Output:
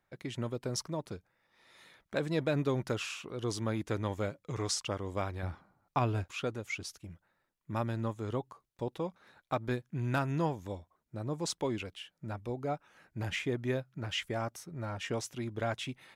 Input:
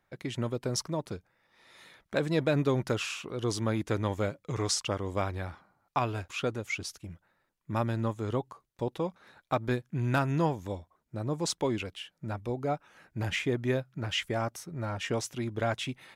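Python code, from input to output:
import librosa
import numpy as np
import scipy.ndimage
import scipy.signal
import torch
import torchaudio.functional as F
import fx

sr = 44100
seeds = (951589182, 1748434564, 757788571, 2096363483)

y = fx.low_shelf(x, sr, hz=460.0, db=7.5, at=(5.43, 6.24))
y = y * 10.0 ** (-4.0 / 20.0)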